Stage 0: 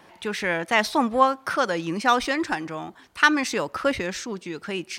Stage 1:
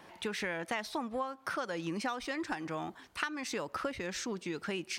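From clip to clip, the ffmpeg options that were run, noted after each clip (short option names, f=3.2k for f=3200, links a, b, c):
-af "acompressor=threshold=-29dB:ratio=16,volume=-3dB"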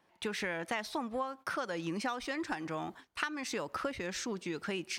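-af "agate=range=-16dB:threshold=-50dB:ratio=16:detection=peak"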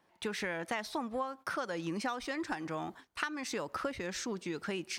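-af "equalizer=f=2.7k:t=o:w=0.77:g=-2"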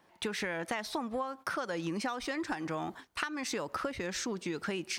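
-af "acompressor=threshold=-40dB:ratio=2,volume=5.5dB"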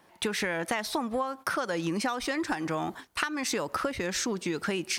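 -af "equalizer=f=12k:t=o:w=0.97:g=5.5,volume=5dB"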